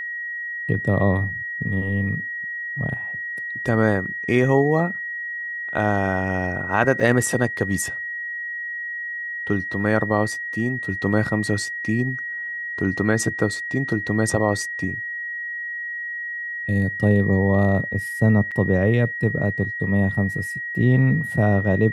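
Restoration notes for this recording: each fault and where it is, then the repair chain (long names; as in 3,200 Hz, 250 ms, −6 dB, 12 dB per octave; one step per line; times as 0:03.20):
whistle 1,900 Hz −27 dBFS
0:07.00: drop-out 3.6 ms
0:18.51–0:18.52: drop-out 6.5 ms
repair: notch filter 1,900 Hz, Q 30
repair the gap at 0:07.00, 3.6 ms
repair the gap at 0:18.51, 6.5 ms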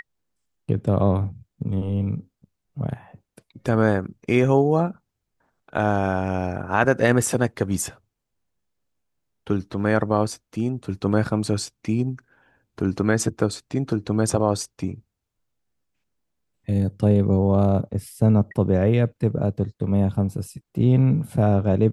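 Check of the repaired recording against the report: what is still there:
none of them is left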